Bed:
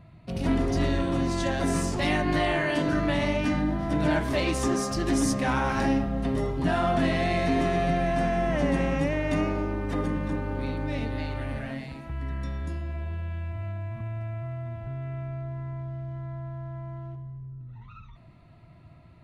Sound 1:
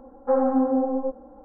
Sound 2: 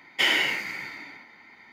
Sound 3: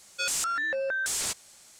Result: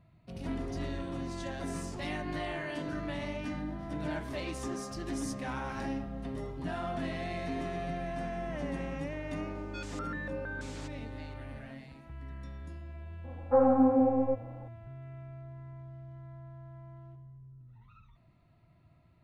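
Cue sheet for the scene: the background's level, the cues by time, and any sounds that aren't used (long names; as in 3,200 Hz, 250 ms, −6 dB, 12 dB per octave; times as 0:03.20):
bed −11.5 dB
0:09.55: mix in 3 −8.5 dB + head-to-tape spacing loss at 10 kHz 23 dB
0:13.24: mix in 1 −2.5 dB
not used: 2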